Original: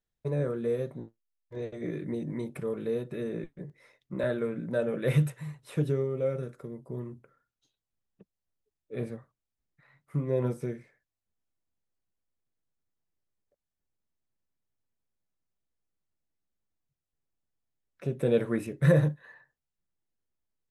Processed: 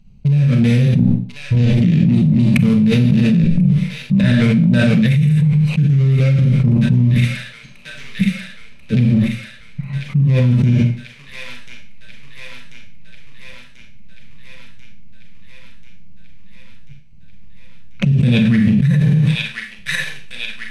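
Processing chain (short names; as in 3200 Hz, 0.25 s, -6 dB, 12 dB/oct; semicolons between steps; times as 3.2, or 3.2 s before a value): Wiener smoothing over 25 samples; EQ curve 110 Hz 0 dB, 200 Hz +4 dB, 360 Hz -27 dB, 940 Hz -16 dB, 1300 Hz -16 dB, 2400 Hz +1 dB, 3400 Hz -1 dB, 5500 Hz 0 dB, 13000 Hz -11 dB; transient shaper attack -3 dB, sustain -7 dB; on a send: thin delay 1.039 s, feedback 67%, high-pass 1500 Hz, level -19 dB; on the sum: Schroeder reverb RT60 0.42 s, combs from 29 ms, DRR 2.5 dB; fast leveller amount 100%; gain +3.5 dB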